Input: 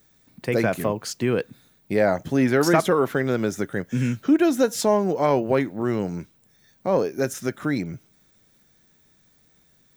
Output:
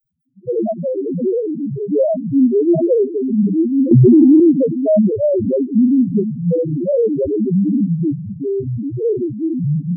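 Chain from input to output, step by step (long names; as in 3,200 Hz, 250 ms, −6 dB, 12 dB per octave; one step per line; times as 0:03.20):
leveller curve on the samples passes 2
spring reverb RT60 2.2 s, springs 35 ms, chirp 70 ms, DRR 11 dB
delay with pitch and tempo change per echo 356 ms, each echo −4 semitones, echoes 3
spectral peaks only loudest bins 1
0:03.91–0:04.40: envelope flattener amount 100%
level +6.5 dB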